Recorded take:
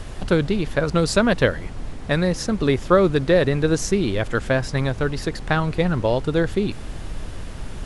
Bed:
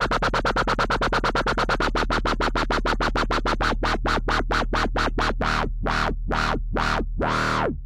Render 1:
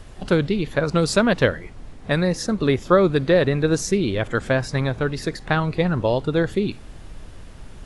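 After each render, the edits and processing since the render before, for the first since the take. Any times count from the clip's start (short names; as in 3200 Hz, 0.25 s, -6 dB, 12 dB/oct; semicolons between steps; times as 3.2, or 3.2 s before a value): noise print and reduce 8 dB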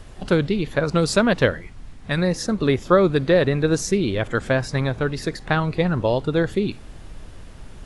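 1.61–2.18 bell 490 Hz -7.5 dB 1.7 oct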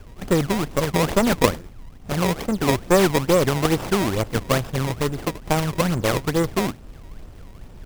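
decimation with a swept rate 26×, swing 160% 2.3 Hz; running maximum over 17 samples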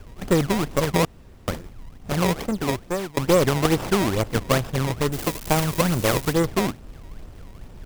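1.05–1.48 room tone; 2.31–3.17 fade out, to -24 dB; 5.12–6.33 switching spikes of -17.5 dBFS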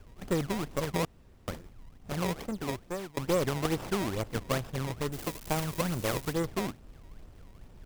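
gain -10 dB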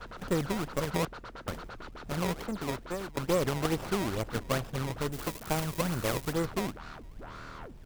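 add bed -23 dB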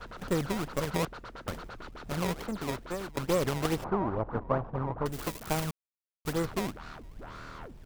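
3.84–5.06 synth low-pass 980 Hz, resonance Q 2; 5.71–6.25 mute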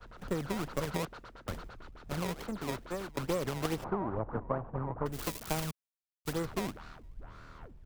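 compressor 6:1, threshold -30 dBFS, peak gain reduction 8 dB; three-band expander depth 70%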